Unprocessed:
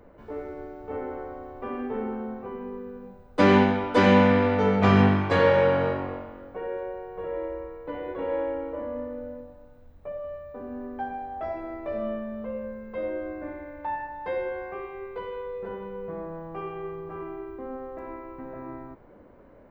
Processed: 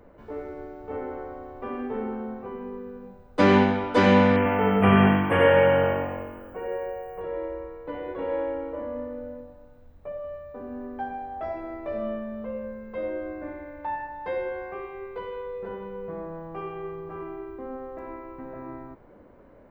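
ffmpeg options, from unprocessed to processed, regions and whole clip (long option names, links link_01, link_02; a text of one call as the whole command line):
ffmpeg -i in.wav -filter_complex "[0:a]asettb=1/sr,asplit=3[link_01][link_02][link_03];[link_01]atrim=end=4.364[link_04];[link_02]atrim=start=4.36:end=7.21,asetpts=PTS-STARTPTS,afade=type=in:duration=0.004:curve=qsin,afade=type=out:start_time=2.846:duration=0.004:curve=qsin,asuperstop=centerf=5300:order=20:qfactor=1,aemphasis=mode=production:type=50fm,aecho=1:1:96:0.562,atrim=end_sample=125685[link_05];[link_03]atrim=start=7.206[link_06];[link_04][link_05]acrossfade=duration=0.004:curve1=hsin:curve2=qsin[link_07];[link_07][link_06]acrossfade=duration=0.004:curve1=qsin:curve2=hsin" out.wav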